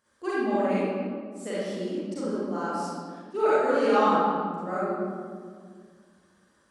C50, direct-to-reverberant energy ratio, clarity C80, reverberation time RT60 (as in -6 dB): -6.0 dB, -11.0 dB, -2.0 dB, 1.9 s